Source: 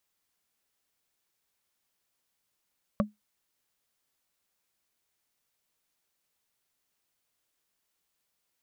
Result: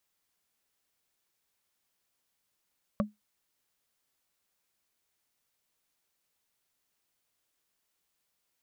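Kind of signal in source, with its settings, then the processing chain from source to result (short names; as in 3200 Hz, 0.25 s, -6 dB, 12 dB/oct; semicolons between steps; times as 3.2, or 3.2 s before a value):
wood hit, lowest mode 210 Hz, modes 3, decay 0.17 s, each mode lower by 1.5 dB, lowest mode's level -19 dB
limiter -17.5 dBFS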